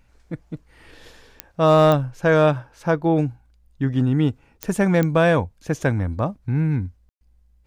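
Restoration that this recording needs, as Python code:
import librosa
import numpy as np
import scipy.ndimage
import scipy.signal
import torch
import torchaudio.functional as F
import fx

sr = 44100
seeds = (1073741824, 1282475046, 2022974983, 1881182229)

y = fx.fix_declip(x, sr, threshold_db=-7.0)
y = fx.fix_declick_ar(y, sr, threshold=10.0)
y = fx.fix_ambience(y, sr, seeds[0], print_start_s=3.3, print_end_s=3.8, start_s=7.09, end_s=7.21)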